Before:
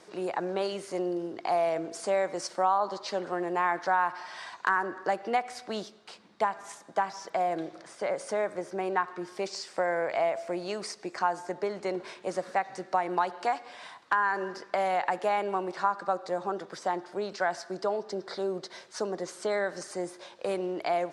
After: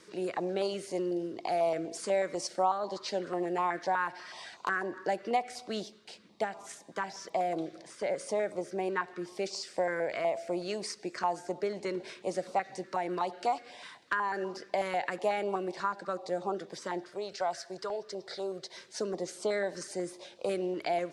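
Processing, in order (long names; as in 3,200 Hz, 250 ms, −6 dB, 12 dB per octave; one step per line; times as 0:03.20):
0:17.09–0:18.77: parametric band 250 Hz −15 dB 0.86 octaves
notch on a step sequencer 8.1 Hz 730–1,700 Hz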